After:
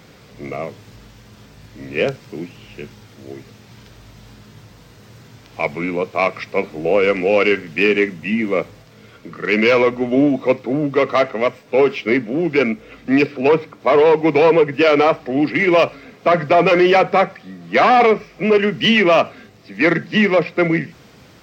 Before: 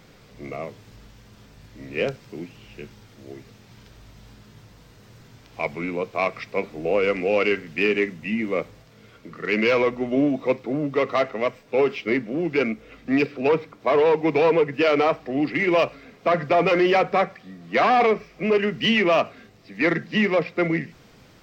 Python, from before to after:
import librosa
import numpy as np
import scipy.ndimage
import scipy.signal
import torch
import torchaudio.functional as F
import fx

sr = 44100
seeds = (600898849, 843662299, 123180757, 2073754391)

y = scipy.signal.sosfilt(scipy.signal.butter(2, 54.0, 'highpass', fs=sr, output='sos'), x)
y = F.gain(torch.from_numpy(y), 6.0).numpy()